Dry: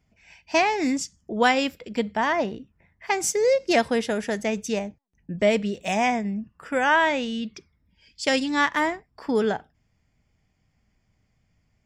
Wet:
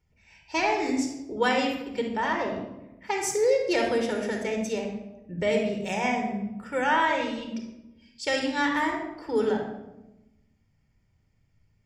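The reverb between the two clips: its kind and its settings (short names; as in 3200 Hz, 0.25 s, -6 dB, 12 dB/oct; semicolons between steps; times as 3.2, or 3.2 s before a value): shoebox room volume 3900 m³, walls furnished, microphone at 4.4 m; gain -7 dB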